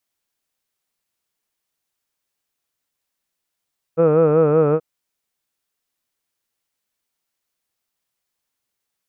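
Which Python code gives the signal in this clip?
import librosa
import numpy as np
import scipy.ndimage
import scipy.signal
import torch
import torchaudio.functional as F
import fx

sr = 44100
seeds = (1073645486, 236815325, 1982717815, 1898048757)

y = fx.formant_vowel(sr, seeds[0], length_s=0.83, hz=160.0, glide_st=-1.0, vibrato_hz=5.3, vibrato_st=0.9, f1_hz=490.0, f2_hz=1300.0, f3_hz=2500.0)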